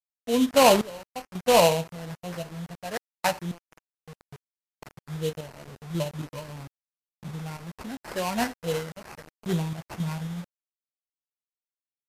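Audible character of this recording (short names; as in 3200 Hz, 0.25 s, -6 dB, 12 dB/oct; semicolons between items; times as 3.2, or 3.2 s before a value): aliases and images of a low sample rate 3500 Hz, jitter 20%; random-step tremolo 3.7 Hz, depth 100%; a quantiser's noise floor 8-bit, dither none; MP3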